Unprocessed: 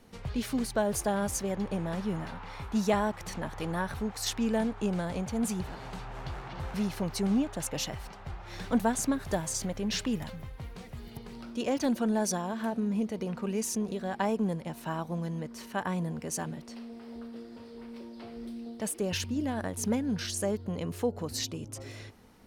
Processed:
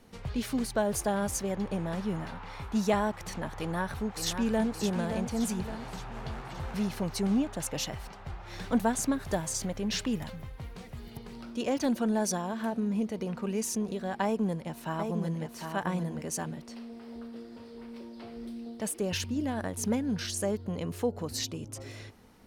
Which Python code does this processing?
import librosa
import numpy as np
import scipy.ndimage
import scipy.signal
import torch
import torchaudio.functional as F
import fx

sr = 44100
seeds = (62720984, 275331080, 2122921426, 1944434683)

y = fx.echo_throw(x, sr, start_s=3.59, length_s=1.11, ms=570, feedback_pct=50, wet_db=-7.5)
y = fx.echo_single(y, sr, ms=753, db=-5.5, at=(14.24, 16.26))